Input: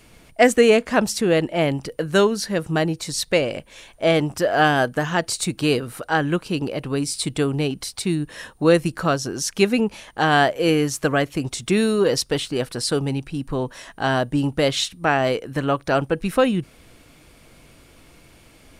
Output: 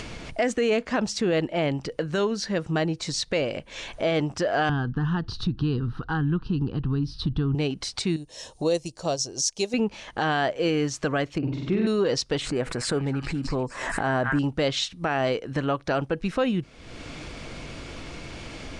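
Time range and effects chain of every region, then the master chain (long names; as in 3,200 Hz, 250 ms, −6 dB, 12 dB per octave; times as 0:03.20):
0:04.69–0:07.55: RIAA equalisation playback + downward compressor 2 to 1, threshold −18 dBFS + phaser with its sweep stopped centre 2,200 Hz, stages 6
0:08.16–0:09.74: drawn EQ curve 120 Hz 0 dB, 210 Hz −6 dB, 610 Hz +5 dB, 930 Hz 0 dB, 1,400 Hz −13 dB, 6,300 Hz +14 dB + expander for the loud parts, over −30 dBFS
0:11.38–0:11.87: head-to-tape spacing loss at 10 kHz 41 dB + flutter between parallel walls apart 7.9 metres, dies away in 0.95 s
0:12.41–0:14.39: flat-topped bell 4,100 Hz −10 dB 1.3 octaves + echo through a band-pass that steps 217 ms, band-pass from 1,600 Hz, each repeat 0.7 octaves, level −6 dB + background raised ahead of every attack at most 61 dB per second
whole clip: low-pass filter 6,800 Hz 24 dB per octave; upward compression, threshold −20 dBFS; brickwall limiter −11.5 dBFS; level −3.5 dB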